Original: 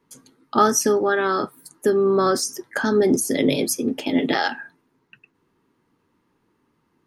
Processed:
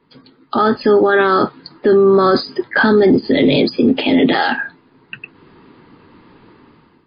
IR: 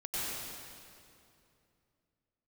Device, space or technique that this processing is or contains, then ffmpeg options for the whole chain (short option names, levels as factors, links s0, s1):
low-bitrate web radio: -af "dynaudnorm=f=240:g=5:m=5.01,alimiter=limit=0.237:level=0:latency=1:release=21,volume=2.66" -ar 11025 -c:a libmp3lame -b:a 24k